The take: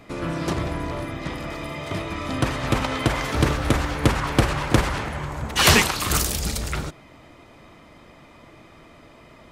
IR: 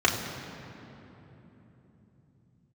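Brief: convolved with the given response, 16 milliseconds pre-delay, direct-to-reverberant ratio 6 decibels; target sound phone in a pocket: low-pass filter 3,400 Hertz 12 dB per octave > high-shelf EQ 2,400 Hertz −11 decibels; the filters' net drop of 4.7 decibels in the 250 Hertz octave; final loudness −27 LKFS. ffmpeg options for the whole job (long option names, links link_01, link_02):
-filter_complex "[0:a]equalizer=frequency=250:width_type=o:gain=-6.5,asplit=2[link_01][link_02];[1:a]atrim=start_sample=2205,adelay=16[link_03];[link_02][link_03]afir=irnorm=-1:irlink=0,volume=-22dB[link_04];[link_01][link_04]amix=inputs=2:normalize=0,lowpass=3400,highshelf=frequency=2400:gain=-11,volume=-1dB"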